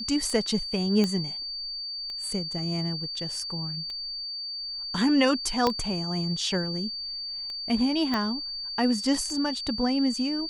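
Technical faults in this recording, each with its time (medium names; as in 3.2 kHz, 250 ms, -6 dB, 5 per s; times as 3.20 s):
tick 33 1/3 rpm -25 dBFS
whine 4.6 kHz -32 dBFS
1.04 s: pop -13 dBFS
5.67 s: pop -10 dBFS
8.14 s: pop -14 dBFS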